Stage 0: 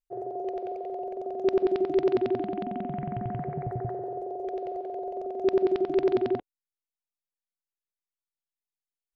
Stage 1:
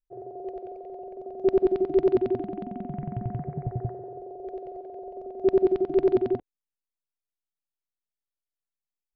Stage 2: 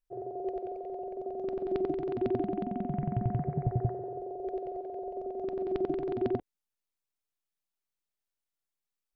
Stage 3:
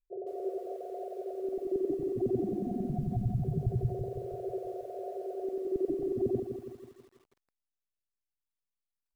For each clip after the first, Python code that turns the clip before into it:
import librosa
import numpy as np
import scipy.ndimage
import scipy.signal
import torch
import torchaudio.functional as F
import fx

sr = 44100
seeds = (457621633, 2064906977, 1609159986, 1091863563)

y1 = fx.tilt_eq(x, sr, slope=-2.5)
y1 = fx.upward_expand(y1, sr, threshold_db=-32.0, expansion=1.5)
y2 = fx.over_compress(y1, sr, threshold_db=-26.0, ratio=-1.0)
y2 = y2 * librosa.db_to_amplitude(-2.5)
y3 = fx.envelope_sharpen(y2, sr, power=3.0)
y3 = fx.echo_crushed(y3, sr, ms=163, feedback_pct=55, bits=10, wet_db=-7.5)